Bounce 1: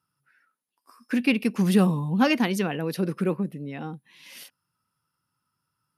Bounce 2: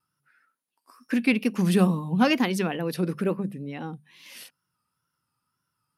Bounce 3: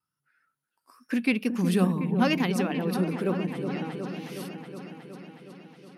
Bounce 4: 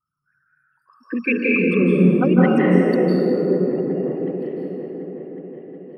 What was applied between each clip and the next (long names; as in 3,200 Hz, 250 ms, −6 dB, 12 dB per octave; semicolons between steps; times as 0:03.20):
tape wow and flutter 77 cents; mains-hum notches 50/100/150/200 Hz
automatic gain control gain up to 5.5 dB; on a send: echo whose low-pass opens from repeat to repeat 367 ms, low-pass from 750 Hz, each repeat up 1 octave, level −6 dB; on the sum: level −7.5 dB
spectral envelope exaggerated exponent 3; convolution reverb RT60 2.7 s, pre-delay 143 ms, DRR −5.5 dB; level +2.5 dB